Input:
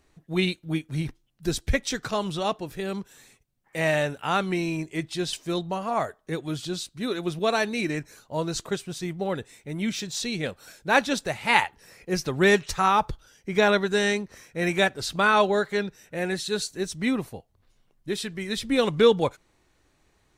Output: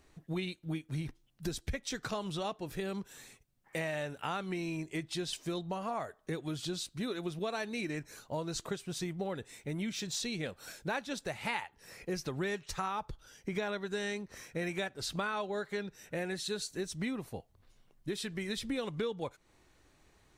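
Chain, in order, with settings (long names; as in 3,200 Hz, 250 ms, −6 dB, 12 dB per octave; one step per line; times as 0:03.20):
downward compressor 6 to 1, threshold −34 dBFS, peak gain reduction 19.5 dB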